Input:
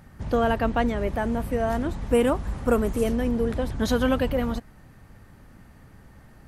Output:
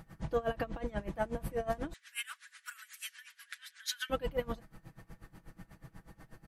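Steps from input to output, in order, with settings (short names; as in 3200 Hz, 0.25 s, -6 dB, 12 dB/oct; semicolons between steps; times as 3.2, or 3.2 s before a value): 1.93–4.1 elliptic high-pass 1600 Hz, stop band 70 dB; compressor 3:1, threshold -29 dBFS, peak gain reduction 8.5 dB; comb 6.1 ms; dB-linear tremolo 8.2 Hz, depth 21 dB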